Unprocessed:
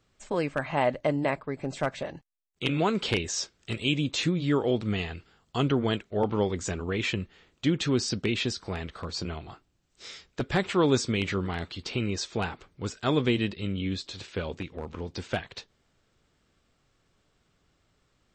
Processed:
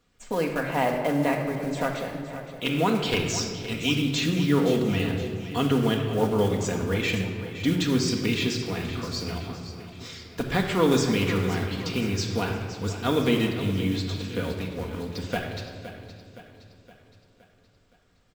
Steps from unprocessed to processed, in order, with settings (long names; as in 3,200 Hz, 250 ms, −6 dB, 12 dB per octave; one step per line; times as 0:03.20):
one scale factor per block 5 bits
on a send: repeating echo 517 ms, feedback 52%, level −13 dB
on the sum: rectangular room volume 2,900 cubic metres, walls mixed, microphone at 1.8 metres